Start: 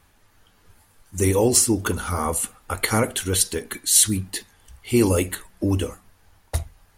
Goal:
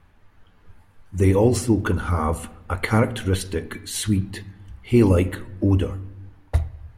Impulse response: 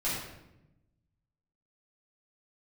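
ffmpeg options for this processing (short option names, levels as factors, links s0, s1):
-filter_complex "[0:a]bass=f=250:g=5,treble=f=4000:g=-15,asplit=2[s0][s1];[1:a]atrim=start_sample=2205,lowpass=4500[s2];[s1][s2]afir=irnorm=-1:irlink=0,volume=0.0708[s3];[s0][s3]amix=inputs=2:normalize=0"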